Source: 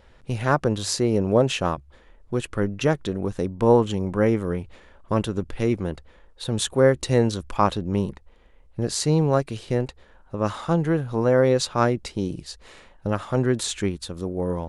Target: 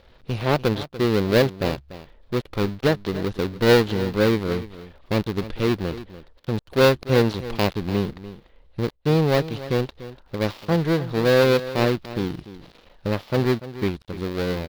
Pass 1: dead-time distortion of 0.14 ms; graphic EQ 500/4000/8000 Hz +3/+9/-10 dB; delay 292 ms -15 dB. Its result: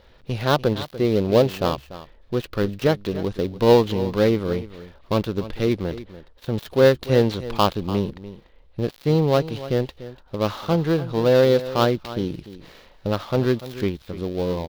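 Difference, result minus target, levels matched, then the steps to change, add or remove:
dead-time distortion: distortion -7 dB
change: dead-time distortion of 0.39 ms

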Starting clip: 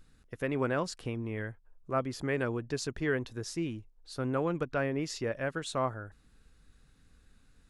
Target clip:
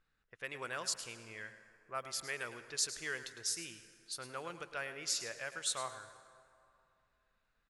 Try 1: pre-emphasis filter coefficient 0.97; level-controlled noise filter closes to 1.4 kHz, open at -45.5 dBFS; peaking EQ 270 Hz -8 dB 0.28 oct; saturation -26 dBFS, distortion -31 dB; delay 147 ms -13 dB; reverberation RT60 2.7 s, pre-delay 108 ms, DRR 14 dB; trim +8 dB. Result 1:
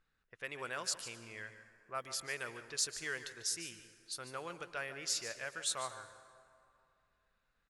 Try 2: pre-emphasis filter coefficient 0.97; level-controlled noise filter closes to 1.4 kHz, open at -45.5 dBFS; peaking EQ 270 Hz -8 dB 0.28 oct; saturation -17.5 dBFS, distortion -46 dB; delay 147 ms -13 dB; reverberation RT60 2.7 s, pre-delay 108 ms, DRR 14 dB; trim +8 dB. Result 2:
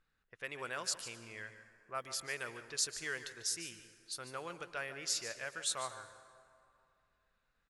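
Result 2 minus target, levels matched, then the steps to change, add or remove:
echo 41 ms late
change: delay 106 ms -13 dB

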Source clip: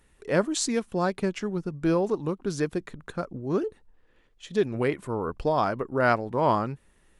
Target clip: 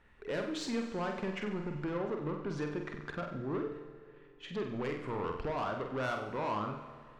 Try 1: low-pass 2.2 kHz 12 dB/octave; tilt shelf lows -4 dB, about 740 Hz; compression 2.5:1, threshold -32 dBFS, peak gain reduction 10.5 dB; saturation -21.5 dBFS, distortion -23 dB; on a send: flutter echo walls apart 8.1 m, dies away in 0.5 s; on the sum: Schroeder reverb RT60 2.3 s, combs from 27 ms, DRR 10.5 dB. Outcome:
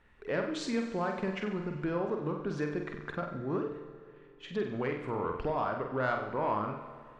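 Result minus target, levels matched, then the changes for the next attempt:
saturation: distortion -12 dB
change: saturation -31.5 dBFS, distortion -11 dB

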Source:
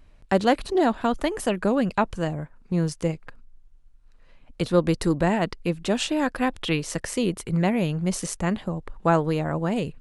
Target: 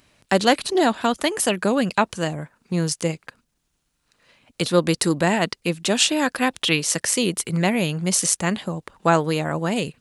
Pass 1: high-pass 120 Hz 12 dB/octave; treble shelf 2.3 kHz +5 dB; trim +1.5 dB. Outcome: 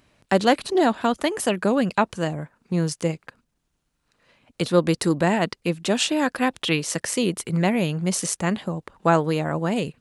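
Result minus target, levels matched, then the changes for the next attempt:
4 kHz band -3.0 dB
change: treble shelf 2.3 kHz +12 dB

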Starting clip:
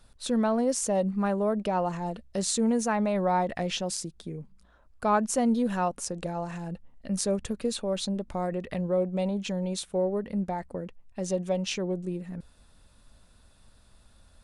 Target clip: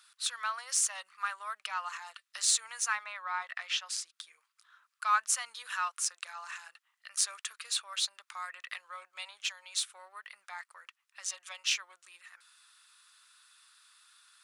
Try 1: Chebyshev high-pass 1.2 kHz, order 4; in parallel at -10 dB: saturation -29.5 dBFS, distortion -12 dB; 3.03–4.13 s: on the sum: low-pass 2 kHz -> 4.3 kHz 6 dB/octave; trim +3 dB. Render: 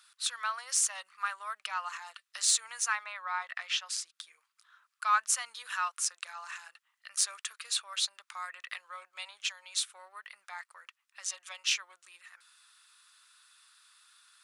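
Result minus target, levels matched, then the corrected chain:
saturation: distortion -7 dB
Chebyshev high-pass 1.2 kHz, order 4; in parallel at -10 dB: saturation -38.5 dBFS, distortion -5 dB; 3.03–4.13 s: on the sum: low-pass 2 kHz -> 4.3 kHz 6 dB/octave; trim +3 dB

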